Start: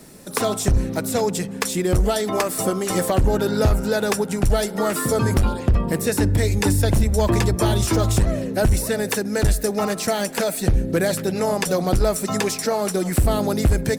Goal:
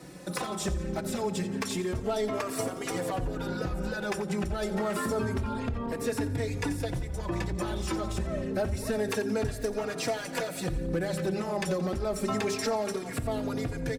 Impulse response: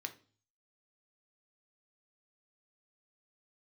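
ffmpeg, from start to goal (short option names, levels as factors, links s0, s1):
-filter_complex "[0:a]highpass=44,aemphasis=mode=reproduction:type=50kf,bandreject=f=50:t=h:w=6,bandreject=f=100:t=h:w=6,bandreject=f=150:t=h:w=6,bandreject=f=200:t=h:w=6,bandreject=f=250:t=h:w=6,bandreject=f=300:t=h:w=6,bandreject=f=350:t=h:w=6,bandreject=f=400:t=h:w=6,asplit=2[s0][s1];[s1]alimiter=limit=0.126:level=0:latency=1,volume=0.75[s2];[s0][s2]amix=inputs=2:normalize=0,acompressor=threshold=0.0794:ratio=10,asoftclip=type=hard:threshold=0.106,asplit=6[s3][s4][s5][s6][s7][s8];[s4]adelay=88,afreqshift=-30,volume=0.188[s9];[s5]adelay=176,afreqshift=-60,volume=0.101[s10];[s6]adelay=264,afreqshift=-90,volume=0.055[s11];[s7]adelay=352,afreqshift=-120,volume=0.0295[s12];[s8]adelay=440,afreqshift=-150,volume=0.016[s13];[s3][s9][s10][s11][s12][s13]amix=inputs=6:normalize=0,asplit=2[s14][s15];[1:a]atrim=start_sample=2205[s16];[s15][s16]afir=irnorm=-1:irlink=0,volume=0.376[s17];[s14][s17]amix=inputs=2:normalize=0,asplit=2[s18][s19];[s19]adelay=3.6,afreqshift=0.28[s20];[s18][s20]amix=inputs=2:normalize=1,volume=0.708"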